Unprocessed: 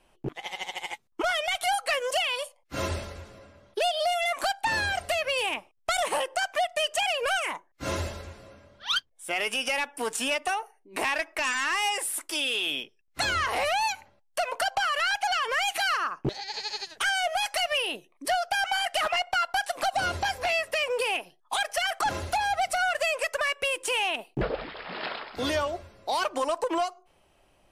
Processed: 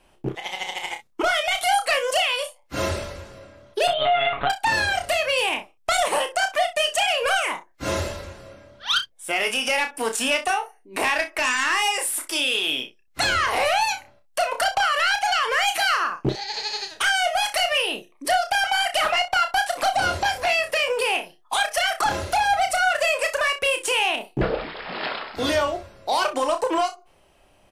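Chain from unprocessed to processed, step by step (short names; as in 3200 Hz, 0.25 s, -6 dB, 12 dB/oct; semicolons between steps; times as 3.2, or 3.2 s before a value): 3.87–4.5 monotone LPC vocoder at 8 kHz 140 Hz; early reflections 31 ms -7 dB, 62 ms -14.5 dB; gain +4.5 dB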